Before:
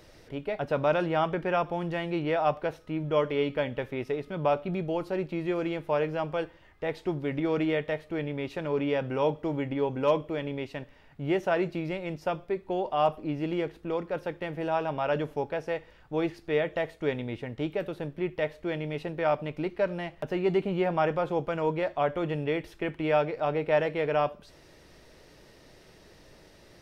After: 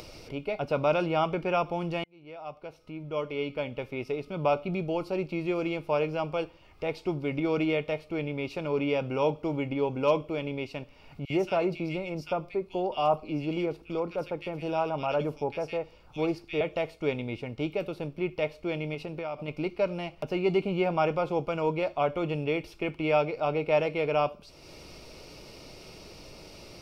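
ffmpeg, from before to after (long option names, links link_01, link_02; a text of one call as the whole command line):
ffmpeg -i in.wav -filter_complex "[0:a]asettb=1/sr,asplit=3[link_01][link_02][link_03];[link_01]atrim=end=11.254[link_04];[link_02]atrim=start=11.25:end=16.61,asetpts=PTS-STARTPTS,afade=type=in:duration=0.004:curve=qsin,afade=type=out:start_time=5.356:duration=0.004:curve=qsin,acrossover=split=1900[link_05][link_06];[link_05]adelay=50[link_07];[link_07][link_06]amix=inputs=2:normalize=0,atrim=end_sample=236376[link_08];[link_03]atrim=start=16.606[link_09];[link_04][link_08]acrossfade=duration=0.004:curve1=hsin:curve2=qsin[link_10];[link_10][link_09]acrossfade=duration=0.004:curve1=qsin:curve2=hsin,asettb=1/sr,asplit=3[link_11][link_12][link_13];[link_11]atrim=end=18.944[link_14];[link_12]atrim=start=18.94:end=19.48,asetpts=PTS-STARTPTS,afade=type=in:duration=0.004:curve=qsin,afade=type=out:start_time=0.536:duration=0.004:curve=qsin,acompressor=threshold=-31dB:ratio=6:attack=3.2:release=140:knee=1:detection=peak[link_15];[link_13]atrim=start=19.476[link_16];[link_14][link_15]acrossfade=duration=0.004:curve1=hsin:curve2=qsin[link_17];[link_17][link_16]acrossfade=duration=0.004:curve1=qsin:curve2=hsin,asplit=2[link_18][link_19];[link_18]atrim=end=2.04,asetpts=PTS-STARTPTS,afade=type=out:start_time=2.036:duration=0.004:curve=hsin[link_20];[link_19]atrim=start=2.04,asetpts=PTS-STARTPTS,afade=type=in:duration=2.38[link_21];[link_20][link_21]concat=n=2:v=0:a=1,acompressor=mode=upward:threshold=-39dB:ratio=2.5,superequalizer=11b=0.316:12b=1.58:14b=1.78" out.wav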